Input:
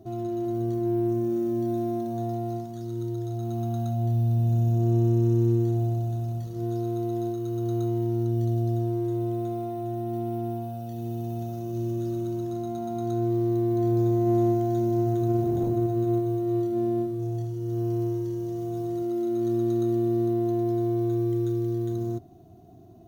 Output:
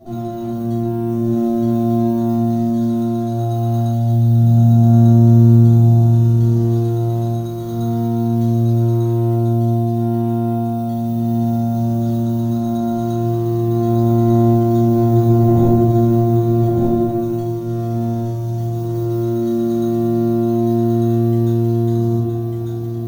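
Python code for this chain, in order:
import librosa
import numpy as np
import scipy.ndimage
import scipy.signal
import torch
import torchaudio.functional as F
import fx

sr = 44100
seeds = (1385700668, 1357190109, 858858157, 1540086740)

p1 = fx.peak_eq(x, sr, hz=1600.0, db=-6.5, octaves=1.5, at=(9.34, 9.97))
p2 = p1 + fx.echo_single(p1, sr, ms=1197, db=-3.0, dry=0)
y = fx.room_shoebox(p2, sr, seeds[0], volume_m3=310.0, walls='furnished', distance_m=6.5)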